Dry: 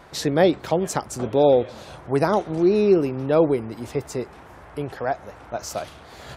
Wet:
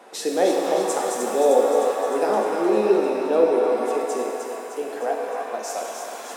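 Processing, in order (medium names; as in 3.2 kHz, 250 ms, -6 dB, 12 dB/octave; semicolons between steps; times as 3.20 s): steep high-pass 210 Hz 48 dB/octave; peaking EQ 9.2 kHz +8.5 dB 0.82 oct; band-stop 4.5 kHz, Q 19; in parallel at -0.5 dB: compression, threshold -32 dBFS, peak gain reduction 18.5 dB; on the sum: small resonant body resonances 470/750/2600 Hz, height 8 dB, ringing for 25 ms; on a send: thinning echo 306 ms, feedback 65%, high-pass 450 Hz, level -6 dB; on the sum: pitch-shifted reverb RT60 2.2 s, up +7 st, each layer -8 dB, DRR 0 dB; trim -9 dB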